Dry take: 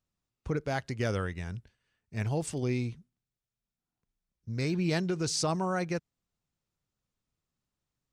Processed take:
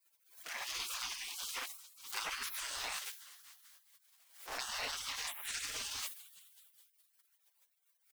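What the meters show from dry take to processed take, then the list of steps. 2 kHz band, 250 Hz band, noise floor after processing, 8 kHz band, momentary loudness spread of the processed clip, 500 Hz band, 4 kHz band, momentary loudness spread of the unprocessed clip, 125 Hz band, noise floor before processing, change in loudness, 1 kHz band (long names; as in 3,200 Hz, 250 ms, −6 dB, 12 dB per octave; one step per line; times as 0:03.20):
−2.5 dB, −32.5 dB, −77 dBFS, −0.5 dB, 16 LU, −21.5 dB, +1.5 dB, 12 LU, −36.0 dB, below −85 dBFS, −7.5 dB, −7.5 dB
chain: converter with a step at zero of −40.5 dBFS
noise gate with hold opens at −39 dBFS
four-comb reverb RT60 0.33 s, combs from 26 ms, DRR −6 dB
downward compressor 3 to 1, threshold −25 dBFS, peak gain reduction 7 dB
on a send: echo with shifted repeats 209 ms, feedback 63%, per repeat +40 Hz, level −19 dB
on the sum: brickwall limiter −24.5 dBFS, peak gain reduction 8.5 dB
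dynamic equaliser 780 Hz, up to +3 dB, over −44 dBFS, Q 1.2
harmonic generator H 3 −21 dB, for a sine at −22 dBFS
gate on every frequency bin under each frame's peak −30 dB weak
bass and treble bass −6 dB, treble −2 dB
harmonic and percussive parts rebalanced percussive +4 dB
background raised ahead of every attack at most 110 dB per second
level +10 dB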